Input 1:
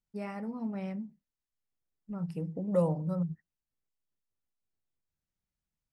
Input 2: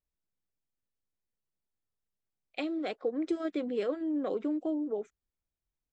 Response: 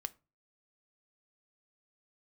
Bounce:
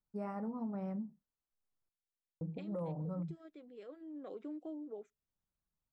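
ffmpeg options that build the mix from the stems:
-filter_complex "[0:a]highshelf=frequency=1700:width_type=q:width=1.5:gain=-10.5,volume=-2dB,asplit=3[link_01][link_02][link_03];[link_01]atrim=end=1.89,asetpts=PTS-STARTPTS,afade=type=out:start_time=1.886:duration=0.004:curve=hsin[link_04];[link_02]atrim=start=1.89:end=2.41,asetpts=PTS-STARTPTS,volume=0[link_05];[link_03]atrim=start=2.41,asetpts=PTS-STARTPTS,afade=type=in:duration=0.004:curve=hsin[link_06];[link_04][link_05][link_06]concat=n=3:v=0:a=1[link_07];[1:a]volume=-7dB,afade=type=out:start_time=2.53:duration=0.26:silence=0.473151,afade=type=in:start_time=3.73:duration=0.78:silence=0.354813,asplit=3[link_08][link_09][link_10];[link_09]volume=-15.5dB[link_11];[link_10]apad=whole_len=261097[link_12];[link_07][link_12]sidechaincompress=threshold=-53dB:ratio=8:attack=10:release=463[link_13];[2:a]atrim=start_sample=2205[link_14];[link_11][link_14]afir=irnorm=-1:irlink=0[link_15];[link_13][link_08][link_15]amix=inputs=3:normalize=0,asoftclip=type=hard:threshold=-21.5dB,alimiter=level_in=8.5dB:limit=-24dB:level=0:latency=1:release=113,volume=-8.5dB"

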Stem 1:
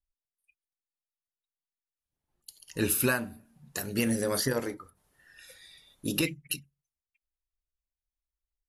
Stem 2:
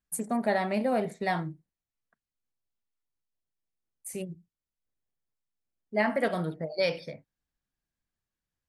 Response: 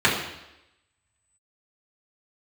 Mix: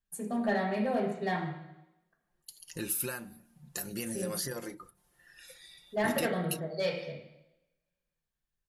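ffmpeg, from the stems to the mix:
-filter_complex "[0:a]aecho=1:1:5.7:0.54,acompressor=threshold=-37dB:ratio=2.5,adynamicequalizer=threshold=0.00316:dfrequency=4200:dqfactor=0.7:tfrequency=4200:tqfactor=0.7:attack=5:release=100:ratio=0.375:range=3:mode=boostabove:tftype=highshelf,volume=-2dB[link_01];[1:a]volume=20.5dB,asoftclip=hard,volume=-20.5dB,volume=-9dB,asplit=2[link_02][link_03];[link_03]volume=-15dB[link_04];[2:a]atrim=start_sample=2205[link_05];[link_04][link_05]afir=irnorm=-1:irlink=0[link_06];[link_01][link_02][link_06]amix=inputs=3:normalize=0"

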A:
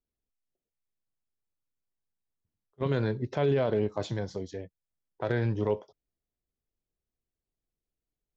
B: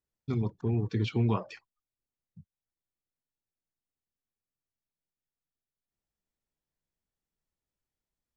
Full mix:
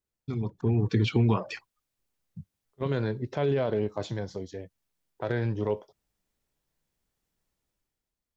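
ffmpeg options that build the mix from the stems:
ffmpeg -i stem1.wav -i stem2.wav -filter_complex "[0:a]volume=-9.5dB[link_01];[1:a]alimiter=limit=-24dB:level=0:latency=1:release=215,volume=0.5dB[link_02];[link_01][link_02]amix=inputs=2:normalize=0,dynaudnorm=framelen=100:gausssize=13:maxgain=9dB" out.wav

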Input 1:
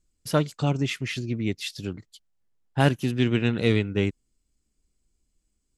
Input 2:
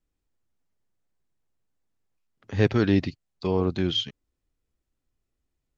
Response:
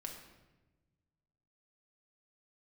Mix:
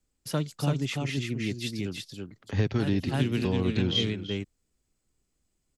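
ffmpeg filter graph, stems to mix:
-filter_complex "[0:a]highpass=92,volume=-3dB,asplit=2[link_01][link_02];[link_02]volume=-3.5dB[link_03];[1:a]acompressor=threshold=-21dB:ratio=6,volume=1.5dB,asplit=3[link_04][link_05][link_06];[link_05]volume=-14dB[link_07];[link_06]apad=whole_len=254707[link_08];[link_01][link_08]sidechaincompress=threshold=-33dB:ratio=4:attack=16:release=213[link_09];[link_03][link_07]amix=inputs=2:normalize=0,aecho=0:1:334:1[link_10];[link_09][link_04][link_10]amix=inputs=3:normalize=0,acrossover=split=260|3000[link_11][link_12][link_13];[link_12]acompressor=threshold=-35dB:ratio=2[link_14];[link_11][link_14][link_13]amix=inputs=3:normalize=0"

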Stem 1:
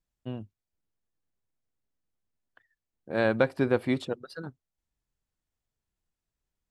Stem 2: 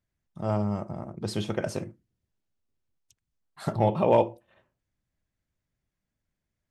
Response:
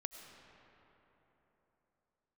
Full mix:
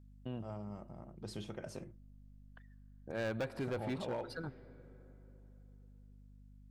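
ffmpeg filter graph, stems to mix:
-filter_complex "[0:a]asubboost=boost=3.5:cutoff=97,volume=-2.5dB,asplit=2[link_01][link_02];[link_02]volume=-12dB[link_03];[1:a]dynaudnorm=framelen=390:gausssize=7:maxgain=8.5dB,aeval=exprs='val(0)+0.0112*(sin(2*PI*50*n/s)+sin(2*PI*2*50*n/s)/2+sin(2*PI*3*50*n/s)/3+sin(2*PI*4*50*n/s)/4+sin(2*PI*5*50*n/s)/5)':channel_layout=same,volume=-17.5dB[link_04];[2:a]atrim=start_sample=2205[link_05];[link_03][link_05]afir=irnorm=-1:irlink=0[link_06];[link_01][link_04][link_06]amix=inputs=3:normalize=0,asoftclip=type=hard:threshold=-24dB,alimiter=level_in=8.5dB:limit=-24dB:level=0:latency=1:release=164,volume=-8.5dB"

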